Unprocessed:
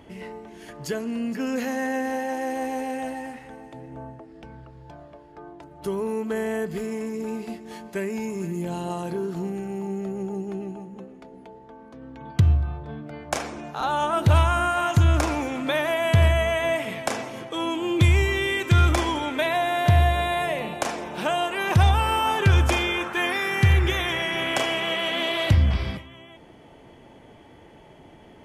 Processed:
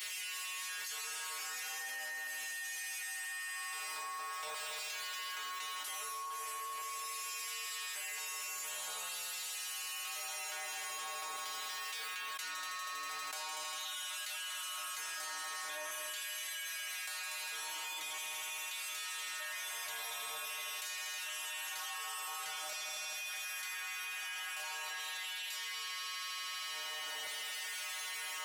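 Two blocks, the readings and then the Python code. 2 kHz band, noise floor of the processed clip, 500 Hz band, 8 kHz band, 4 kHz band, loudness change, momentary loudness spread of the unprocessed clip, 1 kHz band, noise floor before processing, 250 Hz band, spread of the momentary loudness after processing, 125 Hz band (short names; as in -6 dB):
-11.0 dB, -42 dBFS, -29.0 dB, +0.5 dB, -8.0 dB, -15.5 dB, 18 LU, -16.5 dB, -49 dBFS, under -40 dB, 1 LU, under -40 dB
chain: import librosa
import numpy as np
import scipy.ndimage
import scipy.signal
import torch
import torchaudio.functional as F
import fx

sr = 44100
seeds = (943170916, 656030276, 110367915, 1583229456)

y = fx.spec_flatten(x, sr, power=0.51)
y = fx.hum_notches(y, sr, base_hz=50, count=7)
y = fx.chorus_voices(y, sr, voices=2, hz=0.1, base_ms=20, depth_ms=4.9, mix_pct=25)
y = fx.stiff_resonator(y, sr, f0_hz=150.0, decay_s=0.68, stiffness=0.002)
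y = fx.filter_lfo_highpass(y, sr, shape='saw_down', hz=0.44, low_hz=750.0, high_hz=2600.0, q=0.93)
y = fx.echo_heads(y, sr, ms=80, heads='all three', feedback_pct=66, wet_db=-11.5)
y = fx.env_flatten(y, sr, amount_pct=100)
y = y * librosa.db_to_amplitude(-7.5)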